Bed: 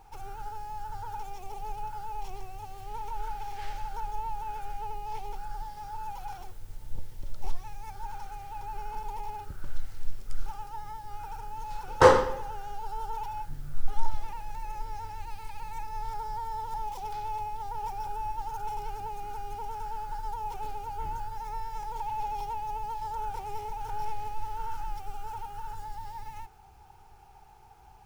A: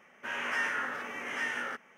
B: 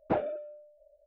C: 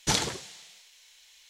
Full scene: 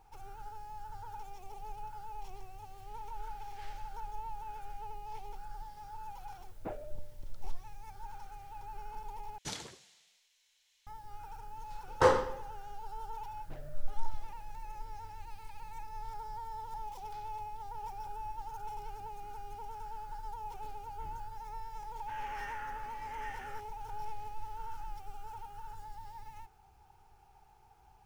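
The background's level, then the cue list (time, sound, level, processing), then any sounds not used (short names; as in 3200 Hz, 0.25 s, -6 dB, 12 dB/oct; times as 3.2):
bed -7.5 dB
6.55 add B -13 dB
9.38 replace with C -15.5 dB
13.4 add B -15.5 dB + soft clip -33.5 dBFS
21.84 add A -14.5 dB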